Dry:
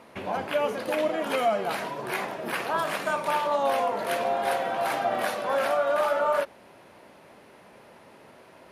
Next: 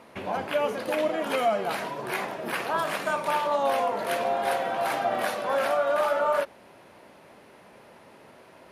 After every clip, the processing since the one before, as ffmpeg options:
-af anull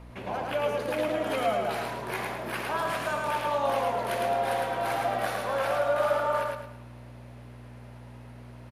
-filter_complex "[0:a]aeval=exprs='val(0)+0.00891*(sin(2*PI*60*n/s)+sin(2*PI*2*60*n/s)/2+sin(2*PI*3*60*n/s)/3+sin(2*PI*4*60*n/s)/4+sin(2*PI*5*60*n/s)/5)':c=same,asplit=2[s0][s1];[s1]aecho=0:1:108|216|324|432|540:0.708|0.262|0.0969|0.0359|0.0133[s2];[s0][s2]amix=inputs=2:normalize=0,volume=0.631"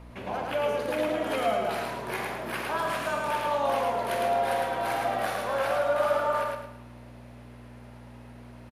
-filter_complex "[0:a]asplit=2[s0][s1];[s1]adelay=46,volume=0.299[s2];[s0][s2]amix=inputs=2:normalize=0"

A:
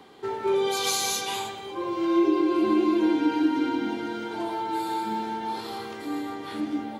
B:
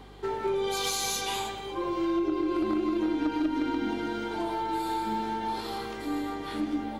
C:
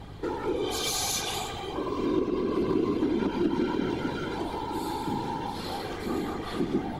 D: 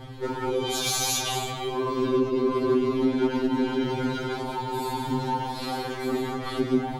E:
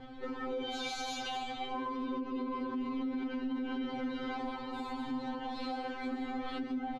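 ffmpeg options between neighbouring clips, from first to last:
-filter_complex "[0:a]acrossover=split=190[s0][s1];[s1]acompressor=threshold=0.0501:ratio=10[s2];[s0][s2]amix=inputs=2:normalize=0,aeval=exprs='0.112*(cos(1*acos(clip(val(0)/0.112,-1,1)))-cos(1*PI/2))+0.02*(cos(2*acos(clip(val(0)/0.112,-1,1)))-cos(2*PI/2))+0.00891*(cos(4*acos(clip(val(0)/0.112,-1,1)))-cos(4*PI/2))':c=same,aeval=exprs='val(0)+0.00316*(sin(2*PI*50*n/s)+sin(2*PI*2*50*n/s)/2+sin(2*PI*3*50*n/s)/3+sin(2*PI*4*50*n/s)/4+sin(2*PI*5*50*n/s)/5)':c=same"
-filter_complex "[0:a]aeval=exprs='val(0)+0.00316*(sin(2*PI*50*n/s)+sin(2*PI*2*50*n/s)/2+sin(2*PI*3*50*n/s)/3+sin(2*PI*4*50*n/s)/4+sin(2*PI*5*50*n/s)/5)':c=same,acrossover=split=400|3000[s0][s1][s2];[s1]acompressor=threshold=0.0158:ratio=6[s3];[s0][s3][s2]amix=inputs=3:normalize=0,afftfilt=real='hypot(re,im)*cos(2*PI*random(0))':imag='hypot(re,im)*sin(2*PI*random(1))':win_size=512:overlap=0.75,volume=2.51"
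-af "afftfilt=real='re*2.45*eq(mod(b,6),0)':imag='im*2.45*eq(mod(b,6),0)':win_size=2048:overlap=0.75,volume=1.88"
-af "lowpass=3500,aecho=1:1:3.9:0.89,alimiter=limit=0.0841:level=0:latency=1:release=121,volume=0.398"

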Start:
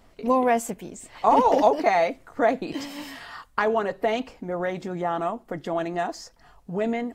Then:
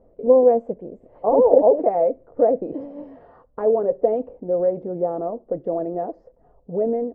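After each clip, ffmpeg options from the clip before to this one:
-af "lowpass=f=520:t=q:w=4.5,volume=0.794"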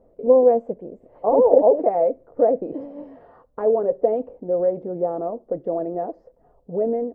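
-af "lowshelf=f=140:g=-4"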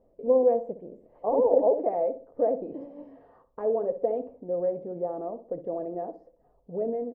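-filter_complex "[0:a]bandreject=f=1400:w=11,asplit=2[s0][s1];[s1]adelay=62,lowpass=f=1100:p=1,volume=0.282,asplit=2[s2][s3];[s3]adelay=62,lowpass=f=1100:p=1,volume=0.4,asplit=2[s4][s5];[s5]adelay=62,lowpass=f=1100:p=1,volume=0.4,asplit=2[s6][s7];[s7]adelay=62,lowpass=f=1100:p=1,volume=0.4[s8];[s2][s4][s6][s8]amix=inputs=4:normalize=0[s9];[s0][s9]amix=inputs=2:normalize=0,volume=0.422"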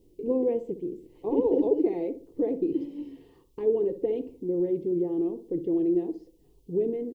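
-af "firequalizer=gain_entry='entry(160,0);entry(230,-7);entry(340,8);entry(600,-26);entry(930,-13);entry(1400,-22);entry(2000,-2);entry(2900,10)':delay=0.05:min_phase=1,volume=2.37"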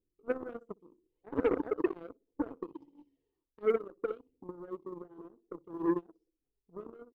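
-af "aphaser=in_gain=1:out_gain=1:delay=4.9:decay=0.44:speed=0.68:type=triangular,aeval=exprs='0.335*(cos(1*acos(clip(val(0)/0.335,-1,1)))-cos(1*PI/2))+0.00422*(cos(3*acos(clip(val(0)/0.335,-1,1)))-cos(3*PI/2))+0.0422*(cos(7*acos(clip(val(0)/0.335,-1,1)))-cos(7*PI/2))':c=same,volume=0.422"

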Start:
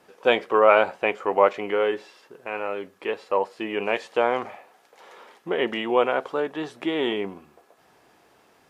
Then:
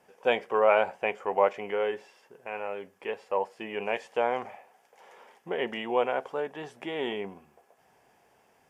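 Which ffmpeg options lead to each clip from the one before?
-af "equalizer=f=315:t=o:w=0.33:g=-8,equalizer=f=800:t=o:w=0.33:g=3,equalizer=f=1250:t=o:w=0.33:g=-6,equalizer=f=4000:t=o:w=0.33:g=-11,volume=0.562"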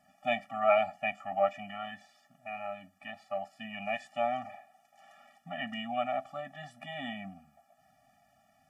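-af "afftfilt=real='re*eq(mod(floor(b*sr/1024/280),2),0)':imag='im*eq(mod(floor(b*sr/1024/280),2),0)':win_size=1024:overlap=0.75"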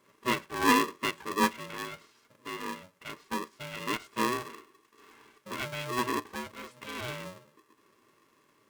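-af "aeval=exprs='val(0)*sgn(sin(2*PI*370*n/s))':c=same,volume=1.19"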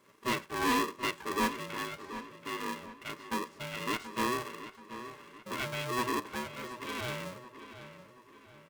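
-filter_complex "[0:a]asoftclip=type=tanh:threshold=0.0531,asplit=2[s0][s1];[s1]adelay=729,lowpass=f=4200:p=1,volume=0.251,asplit=2[s2][s3];[s3]adelay=729,lowpass=f=4200:p=1,volume=0.44,asplit=2[s4][s5];[s5]adelay=729,lowpass=f=4200:p=1,volume=0.44,asplit=2[s6][s7];[s7]adelay=729,lowpass=f=4200:p=1,volume=0.44[s8];[s0][s2][s4][s6][s8]amix=inputs=5:normalize=0,volume=1.12"

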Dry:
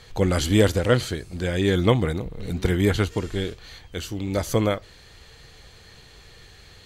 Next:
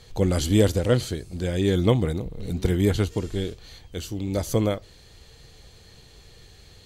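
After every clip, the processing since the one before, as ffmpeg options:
-af "equalizer=f=1600:t=o:w=1.9:g=-7.5"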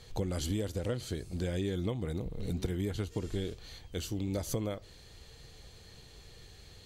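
-af "acompressor=threshold=0.0501:ratio=16,volume=0.668"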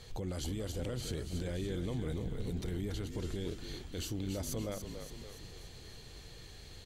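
-filter_complex "[0:a]alimiter=level_in=2.37:limit=0.0631:level=0:latency=1:release=28,volume=0.422,asplit=8[s0][s1][s2][s3][s4][s5][s6][s7];[s1]adelay=285,afreqshift=-46,volume=0.422[s8];[s2]adelay=570,afreqshift=-92,volume=0.24[s9];[s3]adelay=855,afreqshift=-138,volume=0.136[s10];[s4]adelay=1140,afreqshift=-184,volume=0.0785[s11];[s5]adelay=1425,afreqshift=-230,volume=0.0447[s12];[s6]adelay=1710,afreqshift=-276,volume=0.0254[s13];[s7]adelay=1995,afreqshift=-322,volume=0.0145[s14];[s0][s8][s9][s10][s11][s12][s13][s14]amix=inputs=8:normalize=0,volume=1.12"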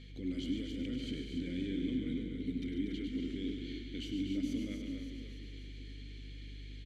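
-filter_complex "[0:a]asplit=3[s0][s1][s2];[s0]bandpass=f=270:t=q:w=8,volume=1[s3];[s1]bandpass=f=2290:t=q:w=8,volume=0.501[s4];[s2]bandpass=f=3010:t=q:w=8,volume=0.355[s5];[s3][s4][s5]amix=inputs=3:normalize=0,aeval=exprs='val(0)+0.000891*(sin(2*PI*50*n/s)+sin(2*PI*2*50*n/s)/2+sin(2*PI*3*50*n/s)/3+sin(2*PI*4*50*n/s)/4+sin(2*PI*5*50*n/s)/5)':c=same,aecho=1:1:102|142.9|239.1:0.398|0.355|0.398,volume=3.35"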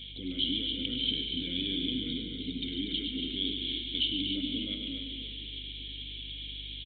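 -af "aexciter=amount=11.5:drive=8.8:freq=3000,aresample=8000,aresample=44100"

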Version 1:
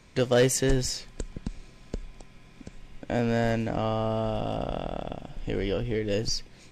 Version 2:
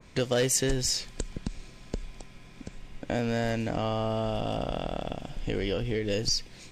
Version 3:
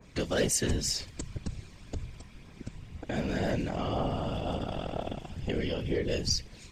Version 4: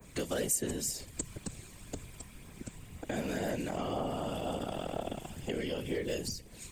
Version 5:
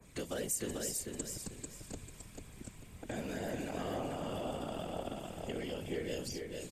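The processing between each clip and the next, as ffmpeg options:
-af "acompressor=threshold=0.0316:ratio=2,adynamicequalizer=threshold=0.00282:dfrequency=2200:dqfactor=0.7:tfrequency=2200:tqfactor=0.7:attack=5:release=100:ratio=0.375:range=2.5:mode=boostabove:tftype=highshelf,volume=1.26"
-af "aphaser=in_gain=1:out_gain=1:delay=1.1:decay=0.28:speed=2:type=triangular,afftfilt=real='hypot(re,im)*cos(2*PI*random(0))':imag='hypot(re,im)*sin(2*PI*random(1))':win_size=512:overlap=0.75,volume=1.41"
-filter_complex "[0:a]acrossover=split=190|740[s0][s1][s2];[s0]acompressor=threshold=0.00501:ratio=4[s3];[s1]acompressor=threshold=0.0224:ratio=4[s4];[s2]acompressor=threshold=0.00891:ratio=4[s5];[s3][s4][s5]amix=inputs=3:normalize=0,aexciter=amount=5.3:drive=6:freq=7500"
-af "aecho=1:1:443|886|1329|1772:0.631|0.189|0.0568|0.017,aresample=32000,aresample=44100,volume=0.562"

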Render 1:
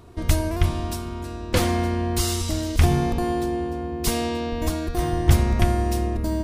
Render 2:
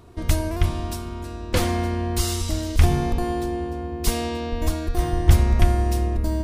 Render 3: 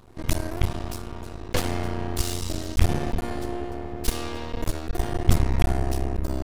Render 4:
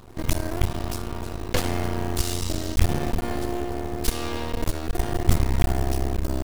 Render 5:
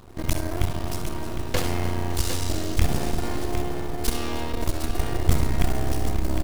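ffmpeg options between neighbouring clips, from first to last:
-af "asubboost=boost=2:cutoff=84,volume=0.891"
-af "aeval=exprs='max(val(0),0)':c=same"
-filter_complex "[0:a]asplit=2[s0][s1];[s1]acompressor=threshold=0.0355:ratio=6,volume=1.41[s2];[s0][s2]amix=inputs=2:normalize=0,acrusher=bits=5:mode=log:mix=0:aa=0.000001,volume=0.75"
-af "aecho=1:1:67|309|564|757:0.316|0.133|0.126|0.398,volume=0.891"

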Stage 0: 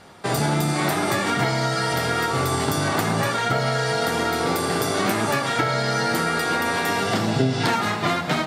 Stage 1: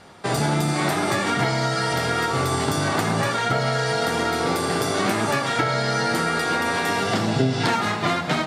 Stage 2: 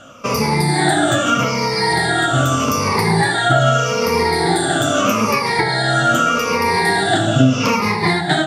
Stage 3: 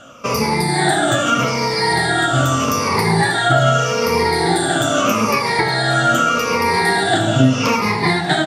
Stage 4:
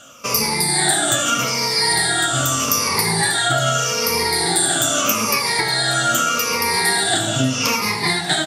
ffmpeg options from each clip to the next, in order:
-af "lowpass=11000"
-af "afftfilt=real='re*pow(10,20/40*sin(2*PI*(0.86*log(max(b,1)*sr/1024/100)/log(2)-(-0.81)*(pts-256)/sr)))':imag='im*pow(10,20/40*sin(2*PI*(0.86*log(max(b,1)*sr/1024/100)/log(2)-(-0.81)*(pts-256)/sr)))':win_size=1024:overlap=0.75,volume=1.26"
-af "bandreject=f=50:t=h:w=6,bandreject=f=100:t=h:w=6,bandreject=f=150:t=h:w=6,bandreject=f=200:t=h:w=6,bandreject=f=250:t=h:w=6,bandreject=f=300:t=h:w=6,aecho=1:1:589:0.0944"
-af "crystalizer=i=5:c=0,volume=0.447"

